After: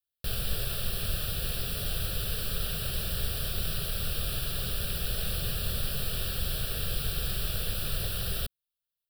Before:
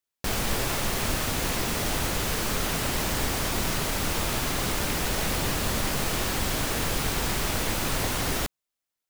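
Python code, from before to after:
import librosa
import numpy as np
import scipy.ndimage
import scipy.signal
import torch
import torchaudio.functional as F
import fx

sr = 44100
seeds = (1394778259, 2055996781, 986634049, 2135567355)

y = fx.peak_eq(x, sr, hz=890.0, db=-13.5, octaves=2.1)
y = fx.fixed_phaser(y, sr, hz=1400.0, stages=8)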